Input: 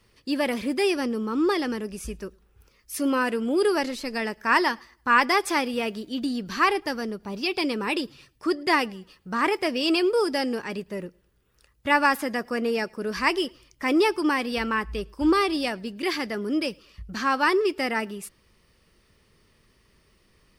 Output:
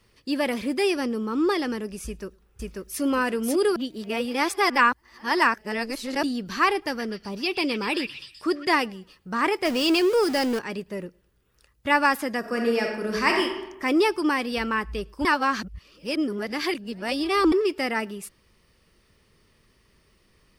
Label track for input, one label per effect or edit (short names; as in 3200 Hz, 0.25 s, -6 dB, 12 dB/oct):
2.050000	3.010000	echo throw 0.54 s, feedback 25%, level 0 dB
3.760000	6.230000	reverse
6.740000	8.780000	delay with a stepping band-pass 0.126 s, band-pass from 2300 Hz, each repeat 0.7 oct, level -4.5 dB
9.650000	10.590000	zero-crossing step of -28.5 dBFS
12.390000	13.430000	reverb throw, RT60 0.96 s, DRR 1.5 dB
15.250000	17.520000	reverse